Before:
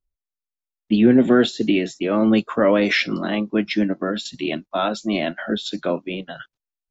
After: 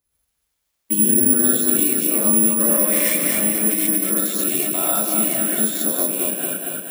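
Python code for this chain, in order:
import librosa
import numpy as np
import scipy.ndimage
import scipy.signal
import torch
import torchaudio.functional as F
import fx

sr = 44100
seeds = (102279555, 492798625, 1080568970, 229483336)

y = scipy.signal.sosfilt(scipy.signal.butter(2, 61.0, 'highpass', fs=sr, output='sos'), x)
y = fx.echo_feedback(y, sr, ms=232, feedback_pct=47, wet_db=-4.5)
y = fx.rev_gated(y, sr, seeds[0], gate_ms=160, shape='rising', drr_db=-6.5)
y = (np.kron(y[::4], np.eye(4)[0]) * 4)[:len(y)]
y = fx.band_squash(y, sr, depth_pct=70)
y = y * 10.0 ** (-15.0 / 20.0)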